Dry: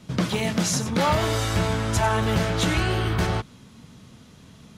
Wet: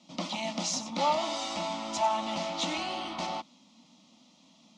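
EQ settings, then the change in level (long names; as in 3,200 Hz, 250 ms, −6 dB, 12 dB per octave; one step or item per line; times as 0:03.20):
dynamic equaliser 1,100 Hz, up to +4 dB, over −35 dBFS, Q 0.74
loudspeaker in its box 320–6,400 Hz, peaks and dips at 410 Hz −10 dB, 700 Hz −3 dB, 1,100 Hz −4 dB
phaser with its sweep stopped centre 430 Hz, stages 6
−2.5 dB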